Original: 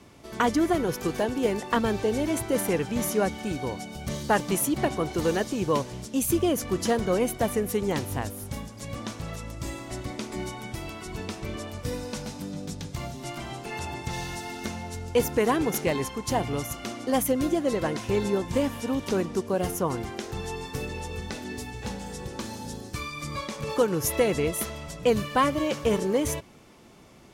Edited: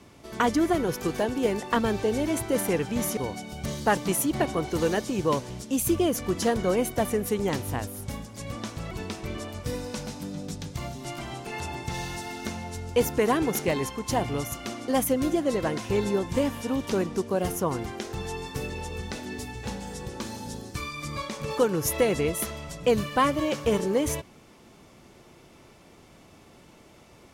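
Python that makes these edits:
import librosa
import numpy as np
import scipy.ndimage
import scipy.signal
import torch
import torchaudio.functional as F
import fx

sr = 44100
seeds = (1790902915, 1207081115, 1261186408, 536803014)

y = fx.edit(x, sr, fx.cut(start_s=3.17, length_s=0.43),
    fx.cut(start_s=9.34, length_s=1.76), tone=tone)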